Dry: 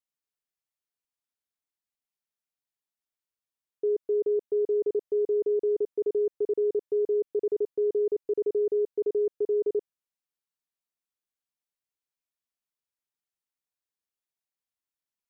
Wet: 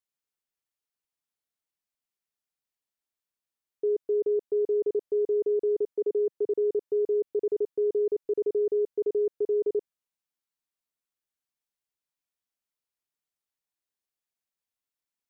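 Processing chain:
0:05.93–0:06.52: high-pass filter 260 Hz → 110 Hz 24 dB per octave

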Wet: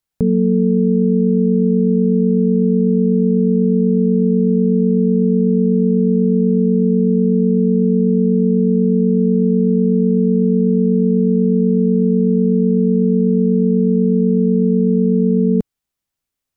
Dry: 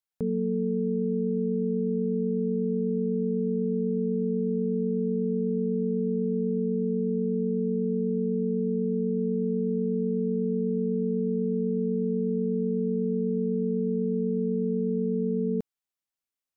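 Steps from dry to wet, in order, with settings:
low-shelf EQ 200 Hz +12 dB
level +8 dB

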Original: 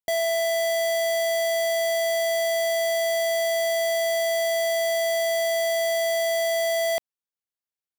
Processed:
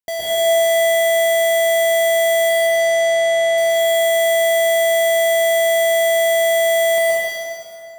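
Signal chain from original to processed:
0:02.49–0:03.58: high-frequency loss of the air 58 metres
dense smooth reverb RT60 2.7 s, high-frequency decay 0.75×, pre-delay 105 ms, DRR −7.5 dB

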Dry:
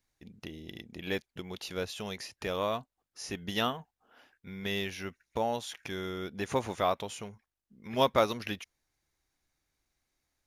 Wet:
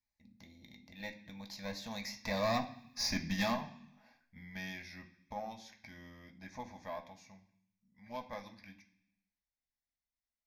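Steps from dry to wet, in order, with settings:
source passing by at 0:02.83, 24 m/s, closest 5.1 metres
tube saturation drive 40 dB, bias 0.55
phaser with its sweep stopped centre 2,000 Hz, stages 8
on a send: convolution reverb RT60 0.65 s, pre-delay 3 ms, DRR 3.5 dB
on the sum: level +14 dB

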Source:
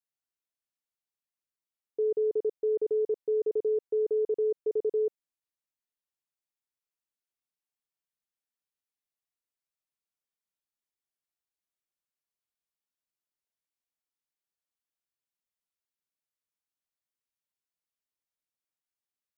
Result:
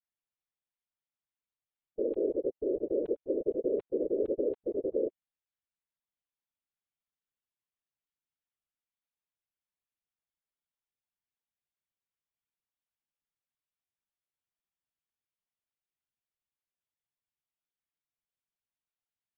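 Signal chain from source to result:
linear-prediction vocoder at 8 kHz pitch kept
random phases in short frames
level −3 dB

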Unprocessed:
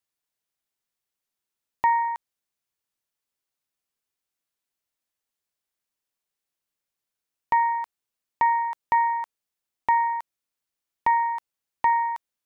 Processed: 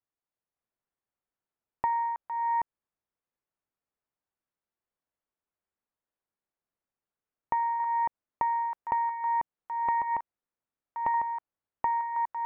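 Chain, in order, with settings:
delay that plays each chunk backwards 557 ms, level −1 dB
low-pass filter 1,400 Hz 12 dB per octave
downward compressor, threshold −23 dBFS, peak gain reduction 7 dB
level −2 dB

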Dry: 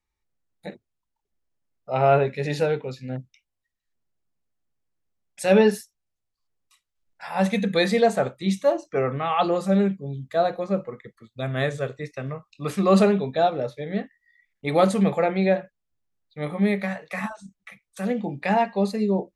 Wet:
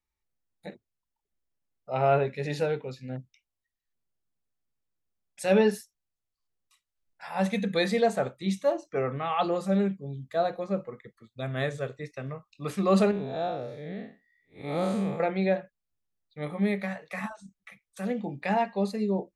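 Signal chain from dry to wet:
0:13.11–0:15.20: spectrum smeared in time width 166 ms
level −5 dB

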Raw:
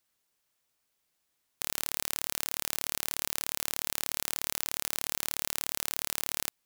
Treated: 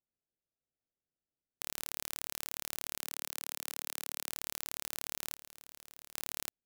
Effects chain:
adaptive Wiener filter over 41 samples
0:03.02–0:04.29: high-pass filter 260 Hz 12 dB per octave
0:05.34–0:06.14: hard clipping −19.5 dBFS, distortion −9 dB
level −7 dB

